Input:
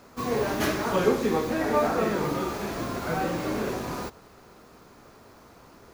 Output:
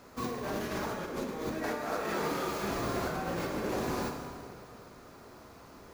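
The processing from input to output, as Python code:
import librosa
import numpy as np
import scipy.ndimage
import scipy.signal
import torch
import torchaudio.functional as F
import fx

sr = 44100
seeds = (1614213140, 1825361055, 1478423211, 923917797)

y = fx.low_shelf(x, sr, hz=500.0, db=-9.0, at=(1.63, 2.64))
y = fx.over_compress(y, sr, threshold_db=-31.0, ratio=-1.0)
y = fx.rev_plate(y, sr, seeds[0], rt60_s=2.4, hf_ratio=0.75, predelay_ms=0, drr_db=2.5)
y = y * librosa.db_to_amplitude(-5.5)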